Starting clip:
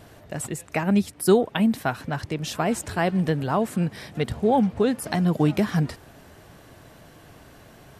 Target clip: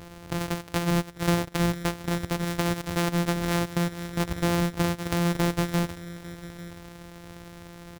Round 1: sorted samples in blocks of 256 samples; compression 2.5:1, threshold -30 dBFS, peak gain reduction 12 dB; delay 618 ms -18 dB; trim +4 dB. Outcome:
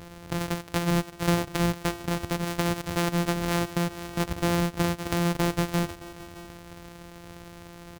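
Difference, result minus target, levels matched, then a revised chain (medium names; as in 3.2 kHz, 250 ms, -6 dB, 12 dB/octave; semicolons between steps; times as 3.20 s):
echo 229 ms early
sorted samples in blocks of 256 samples; compression 2.5:1, threshold -30 dBFS, peak gain reduction 12 dB; delay 847 ms -18 dB; trim +4 dB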